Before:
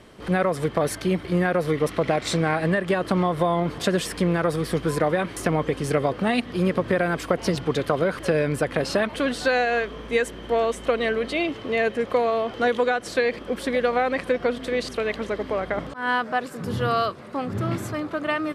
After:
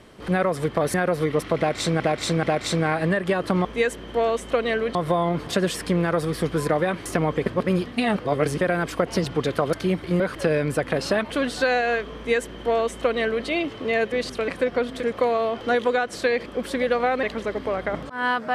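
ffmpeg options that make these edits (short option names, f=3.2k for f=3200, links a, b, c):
-filter_complex "[0:a]asplit=14[a][b][c][d][e][f][g][h][i][j][k][l][m][n];[a]atrim=end=0.942[o];[b]atrim=start=1.408:end=2.472[p];[c]atrim=start=2.038:end=2.472[q];[d]atrim=start=2.038:end=3.262[r];[e]atrim=start=9.998:end=11.302[s];[f]atrim=start=3.258:end=5.772[t];[g]atrim=start=5.768:end=6.922,asetpts=PTS-STARTPTS,areverse[u];[h]atrim=start=6.918:end=8.042[v];[i]atrim=start=0.938:end=1.412[w];[j]atrim=start=8.038:end=11.962[x];[k]atrim=start=14.708:end=15.072[y];[l]atrim=start=14.158:end=14.712[z];[m]atrim=start=11.958:end=14.162[aa];[n]atrim=start=15.068[ab];[o][p]acrossfade=d=0.004:c1=hsin:c2=hsin[ac];[ac][q]acrossfade=d=0.004:c1=hsin:c2=hsin[ad];[ad][r]acrossfade=d=0.004:c1=hsin:c2=hsin[ae];[ae][s]acrossfade=d=0.004:c1=hsin:c2=hsin[af];[af][t]acrossfade=d=0.004:c1=hsin:c2=hsin[ag];[ag][u]acrossfade=d=0.004:c1=hsin:c2=hsin[ah];[ah][v]acrossfade=d=0.004:c1=hsin:c2=hsin[ai];[ai][w]acrossfade=d=0.004:c1=hsin:c2=hsin[aj];[aj][x]acrossfade=d=0.004:c1=hsin:c2=hsin[ak];[ak][y]acrossfade=d=0.004:c1=hsin:c2=hsin[al];[al][z]acrossfade=d=0.004:c1=hsin:c2=hsin[am];[am][aa]acrossfade=d=0.004:c1=hsin:c2=hsin[an];[an][ab]acrossfade=d=0.004:c1=hsin:c2=hsin"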